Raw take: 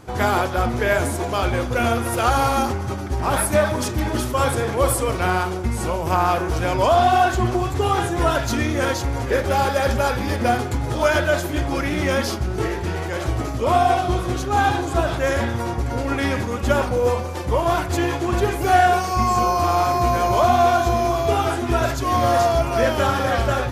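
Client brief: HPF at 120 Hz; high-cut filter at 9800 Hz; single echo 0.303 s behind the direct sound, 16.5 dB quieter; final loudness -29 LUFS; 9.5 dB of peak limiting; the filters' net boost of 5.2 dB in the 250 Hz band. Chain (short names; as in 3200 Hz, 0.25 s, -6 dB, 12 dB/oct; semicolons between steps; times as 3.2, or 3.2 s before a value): HPF 120 Hz; LPF 9800 Hz; bell 250 Hz +7 dB; limiter -13.5 dBFS; echo 0.303 s -16.5 dB; gain -6.5 dB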